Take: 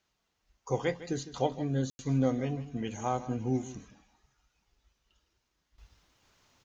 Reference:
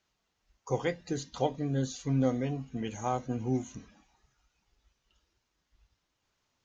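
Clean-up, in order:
ambience match 0:01.90–0:01.99
echo removal 156 ms −15 dB
level correction −11 dB, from 0:05.78

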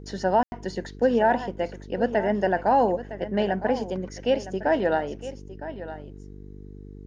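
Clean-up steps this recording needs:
hum removal 49.5 Hz, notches 9
ambience match 0:00.43–0:00.52
echo removal 960 ms −13.5 dB

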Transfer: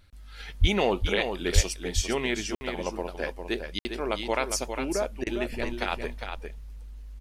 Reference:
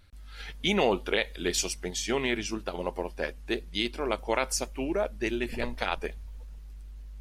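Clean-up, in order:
high-pass at the plosives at 0:00.60/0:01.54
repair the gap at 0:02.55/0:03.79, 60 ms
repair the gap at 0:05.24, 25 ms
echo removal 404 ms −7 dB

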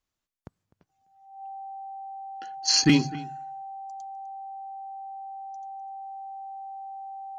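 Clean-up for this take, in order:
clipped peaks rebuilt −10.5 dBFS
notch filter 780 Hz, Q 30
echo removal 253 ms −20 dB

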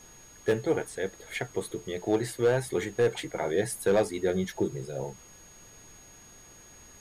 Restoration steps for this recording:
clipped peaks rebuilt −17 dBFS
notch filter 6,600 Hz, Q 30
noise reduction from a noise print 20 dB

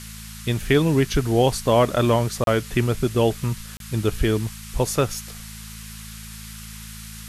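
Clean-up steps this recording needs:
hum removal 54.4 Hz, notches 4
repair the gap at 0:02.44/0:03.77, 32 ms
noise reduction from a noise print 28 dB

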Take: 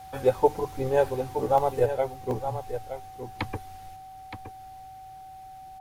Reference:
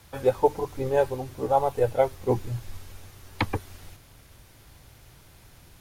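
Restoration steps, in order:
notch filter 760 Hz, Q 30
repair the gap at 0:01.58/0:02.31, 1.4 ms
echo removal 919 ms −10 dB
level correction +5.5 dB, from 0:01.86

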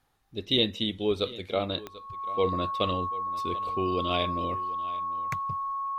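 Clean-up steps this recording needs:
click removal
notch filter 1,100 Hz, Q 30
echo removal 739 ms −18.5 dB

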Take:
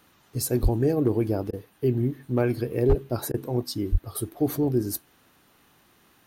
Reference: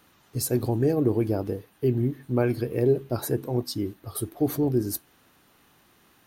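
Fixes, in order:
clipped peaks rebuilt −12 dBFS
high-pass at the plosives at 0:00.62/0:02.88/0:03.91
repair the gap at 0:01.51/0:03.32, 19 ms

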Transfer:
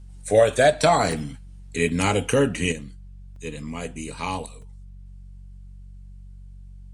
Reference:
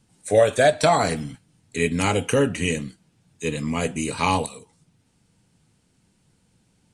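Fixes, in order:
hum removal 46.9 Hz, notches 4
repair the gap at 0:01.12/0:01.89/0:03.36/0:04.62, 2.5 ms
level 0 dB, from 0:02.72 +7.5 dB

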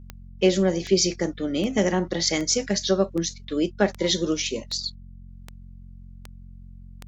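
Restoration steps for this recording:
click removal
hum removal 45 Hz, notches 5

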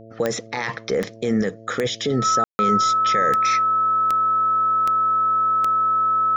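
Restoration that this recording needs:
click removal
hum removal 111.8 Hz, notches 6
notch filter 1,300 Hz, Q 30
ambience match 0:02.44–0:02.59

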